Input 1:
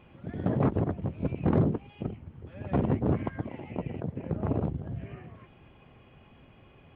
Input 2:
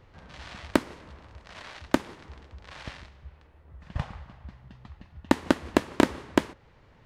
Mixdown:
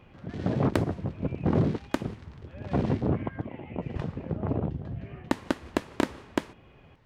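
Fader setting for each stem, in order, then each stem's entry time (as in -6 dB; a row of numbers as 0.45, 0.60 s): 0.0, -5.5 dB; 0.00, 0.00 s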